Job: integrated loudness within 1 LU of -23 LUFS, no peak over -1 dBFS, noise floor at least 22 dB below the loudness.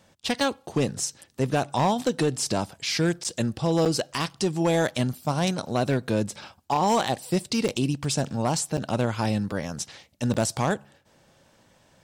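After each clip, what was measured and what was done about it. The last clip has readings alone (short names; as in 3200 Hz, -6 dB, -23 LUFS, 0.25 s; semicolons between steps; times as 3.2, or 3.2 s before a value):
clipped 0.8%; flat tops at -16.0 dBFS; dropouts 5; longest dropout 7.3 ms; loudness -26.0 LUFS; peak -16.0 dBFS; loudness target -23.0 LUFS
-> clip repair -16 dBFS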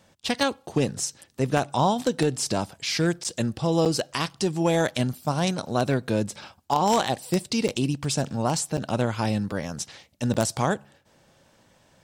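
clipped 0.0%; dropouts 5; longest dropout 7.3 ms
-> interpolate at 3.24/3.85/7.68/8.77/10.34, 7.3 ms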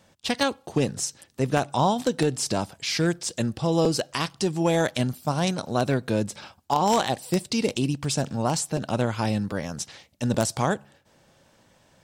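dropouts 0; loudness -26.0 LUFS; peak -7.0 dBFS; loudness target -23.0 LUFS
-> gain +3 dB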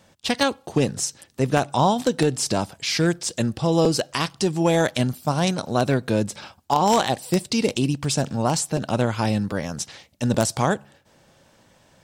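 loudness -23.0 LUFS; peak -4.0 dBFS; noise floor -58 dBFS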